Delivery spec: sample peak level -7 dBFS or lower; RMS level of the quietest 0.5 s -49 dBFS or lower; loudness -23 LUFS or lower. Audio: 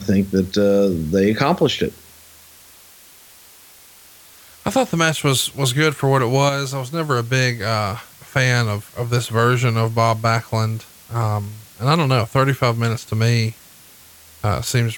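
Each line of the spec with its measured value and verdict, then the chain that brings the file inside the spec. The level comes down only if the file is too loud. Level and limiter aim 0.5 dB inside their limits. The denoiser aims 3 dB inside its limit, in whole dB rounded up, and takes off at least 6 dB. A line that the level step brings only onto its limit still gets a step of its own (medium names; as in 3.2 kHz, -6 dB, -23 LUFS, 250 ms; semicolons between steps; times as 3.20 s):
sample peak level -3.0 dBFS: fail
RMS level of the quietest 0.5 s -46 dBFS: fail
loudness -19.0 LUFS: fail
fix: trim -4.5 dB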